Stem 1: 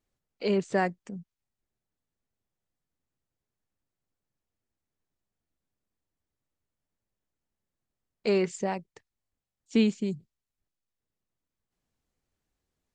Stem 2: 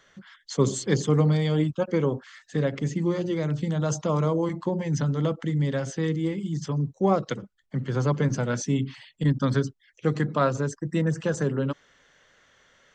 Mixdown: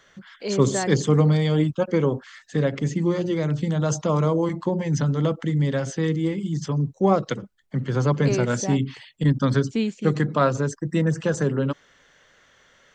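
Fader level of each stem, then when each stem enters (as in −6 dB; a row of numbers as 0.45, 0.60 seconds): −1.0, +3.0 decibels; 0.00, 0.00 seconds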